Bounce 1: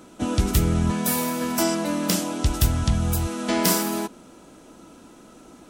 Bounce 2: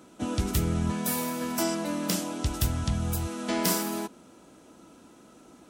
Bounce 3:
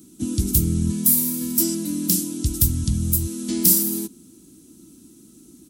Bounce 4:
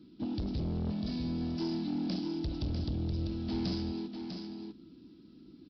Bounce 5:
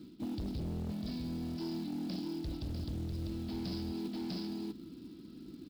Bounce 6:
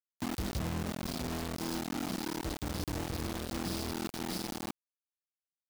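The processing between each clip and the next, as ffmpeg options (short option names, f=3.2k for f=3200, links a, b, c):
-af "highpass=54,volume=-5.5dB"
-af "firequalizer=gain_entry='entry(330,0);entry(550,-25);entry(4100,-3);entry(11000,10)':delay=0.05:min_phase=1,volume=6dB"
-af "aresample=11025,asoftclip=type=tanh:threshold=-24dB,aresample=44100,aecho=1:1:648:0.473,volume=-6dB"
-af "areverse,acompressor=threshold=-41dB:ratio=8,areverse,acrusher=bits=6:mode=log:mix=0:aa=0.000001,volume=5dB"
-af "aresample=16000,aresample=44100,acrusher=bits=5:mix=0:aa=0.000001"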